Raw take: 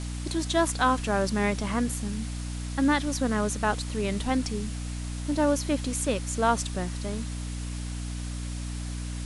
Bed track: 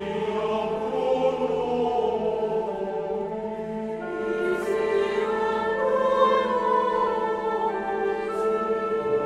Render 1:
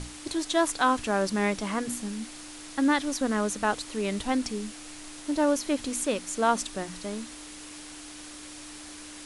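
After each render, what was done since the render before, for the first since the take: notches 60/120/180/240 Hz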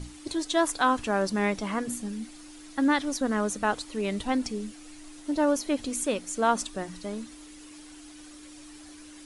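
denoiser 9 dB, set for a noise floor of -44 dBFS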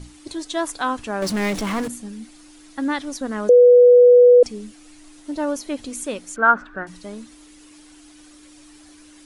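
1.22–1.88 power-law curve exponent 0.5; 3.49–4.43 bleep 490 Hz -6.5 dBFS; 6.36–6.87 synth low-pass 1500 Hz, resonance Q 11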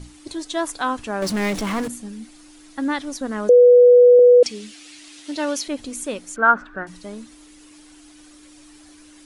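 4.19–5.68 weighting filter D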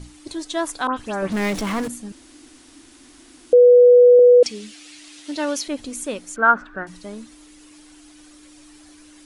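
0.87–1.33 dispersion highs, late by 0.108 s, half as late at 3000 Hz; 2.12–3.53 room tone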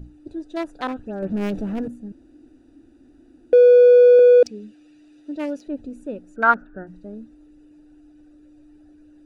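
Wiener smoothing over 41 samples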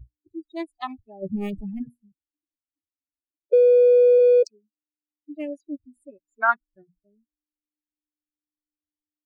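per-bin expansion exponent 3; compressor 3:1, threshold -14 dBFS, peak gain reduction 3.5 dB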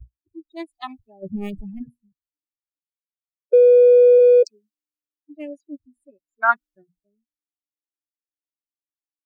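three-band expander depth 40%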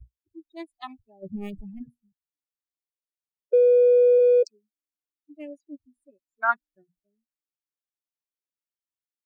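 gain -5.5 dB

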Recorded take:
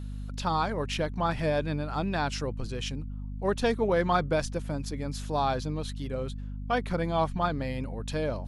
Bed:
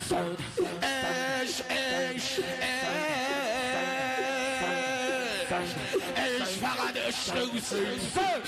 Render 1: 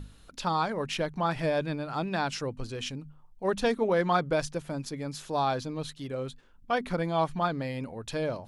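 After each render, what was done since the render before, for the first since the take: notches 50/100/150/200/250 Hz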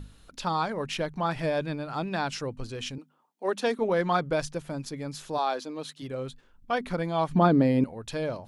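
2.98–3.79 steep high-pass 230 Hz; 5.37–6.01 HPF 360 Hz -> 160 Hz 24 dB/oct; 7.31–7.84 bell 280 Hz +15 dB 2.5 oct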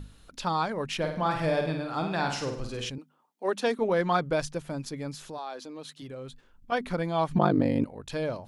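0.97–2.9 flutter echo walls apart 8.6 m, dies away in 0.57 s; 5.14–6.72 compressor 2:1, threshold -41 dBFS; 7.37–8.1 ring modulator 25 Hz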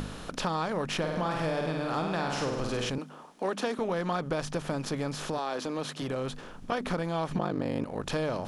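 per-bin compression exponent 0.6; compressor 6:1, threshold -27 dBFS, peak gain reduction 11.5 dB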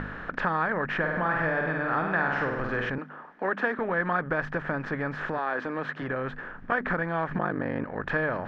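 synth low-pass 1700 Hz, resonance Q 5.2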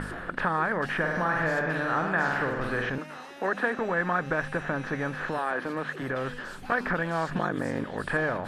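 add bed -16 dB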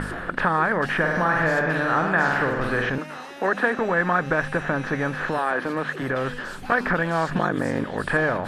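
gain +5.5 dB

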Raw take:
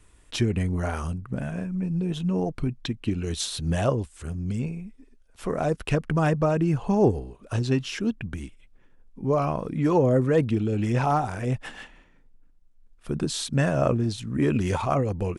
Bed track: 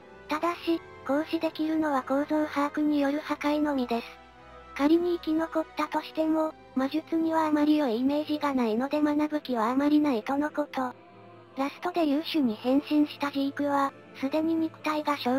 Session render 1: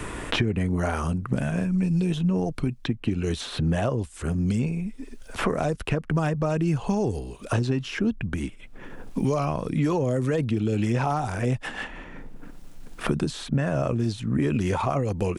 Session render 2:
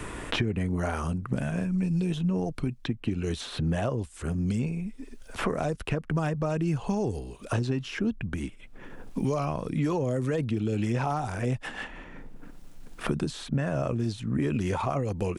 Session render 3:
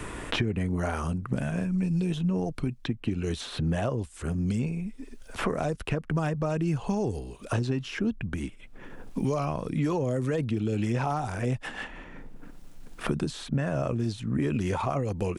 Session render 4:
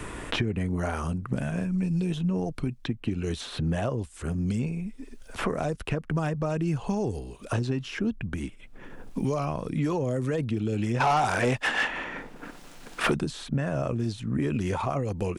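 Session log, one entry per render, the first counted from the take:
limiter -15.5 dBFS, peak gain reduction 5.5 dB; three-band squash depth 100%
gain -3.5 dB
nothing audible
11–13.16 overdrive pedal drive 20 dB, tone 5400 Hz, clips at -13.5 dBFS

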